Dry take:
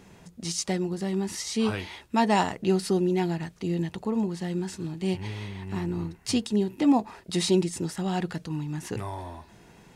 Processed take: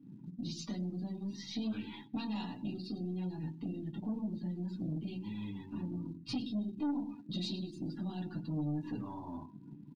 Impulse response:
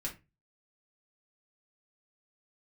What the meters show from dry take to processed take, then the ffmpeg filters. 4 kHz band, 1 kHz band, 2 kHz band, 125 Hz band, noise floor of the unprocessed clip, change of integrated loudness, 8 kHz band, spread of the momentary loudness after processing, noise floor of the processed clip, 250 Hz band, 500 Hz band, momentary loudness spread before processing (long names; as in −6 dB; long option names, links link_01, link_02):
−11.0 dB, −19.0 dB, −18.0 dB, −9.0 dB, −54 dBFS, −11.5 dB, below −20 dB, 6 LU, −53 dBFS, −10.0 dB, −20.0 dB, 11 LU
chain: -filter_complex "[0:a]acrossover=split=3300[link_01][link_02];[link_01]acompressor=threshold=-36dB:ratio=16[link_03];[link_03][link_02]amix=inputs=2:normalize=0,acrossover=split=200 3300:gain=0.112 1 0.0891[link_04][link_05][link_06];[link_04][link_05][link_06]amix=inputs=3:normalize=0,aecho=1:1:104|208|312|416:0.282|0.113|0.0451|0.018[link_07];[1:a]atrim=start_sample=2205,afade=type=out:start_time=0.18:duration=0.01,atrim=end_sample=8379[link_08];[link_07][link_08]afir=irnorm=-1:irlink=0,asplit=2[link_09][link_10];[link_10]acrusher=bits=5:dc=4:mix=0:aa=0.000001,volume=-4dB[link_11];[link_09][link_11]amix=inputs=2:normalize=0,equalizer=frequency=125:width_type=o:width=1:gain=12,equalizer=frequency=250:width_type=o:width=1:gain=8,equalizer=frequency=500:width_type=o:width=1:gain=-10,equalizer=frequency=1000:width_type=o:width=1:gain=3,equalizer=frequency=2000:width_type=o:width=1:gain=-7,equalizer=frequency=4000:width_type=o:width=1:gain=6,acrusher=bits=7:mode=log:mix=0:aa=0.000001,asoftclip=type=tanh:threshold=-26.5dB,afftdn=noise_reduction=22:noise_floor=-46,volume=-3.5dB"